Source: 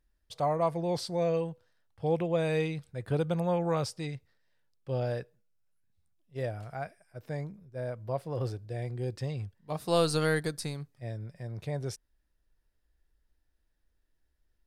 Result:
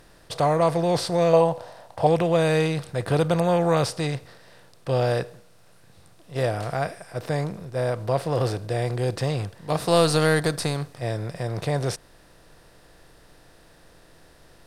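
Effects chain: per-bin compression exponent 0.6; 1.33–2.07 band shelf 740 Hz +11 dB 1.1 oct; gain +5.5 dB

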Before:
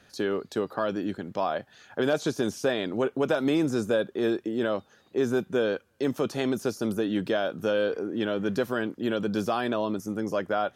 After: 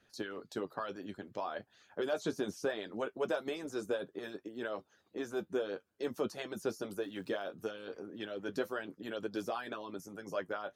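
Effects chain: harmonic-percussive split harmonic -17 dB; flange 0.64 Hz, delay 8.8 ms, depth 2.1 ms, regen -45%; 6.97–7.43 crackle 470/s -54 dBFS; gain -3 dB

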